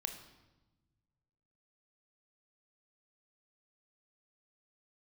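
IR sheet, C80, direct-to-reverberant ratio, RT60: 11.0 dB, 5.5 dB, 1.1 s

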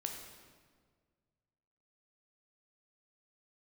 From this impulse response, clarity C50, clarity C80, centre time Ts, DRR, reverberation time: 4.0 dB, 6.0 dB, 47 ms, 2.0 dB, 1.7 s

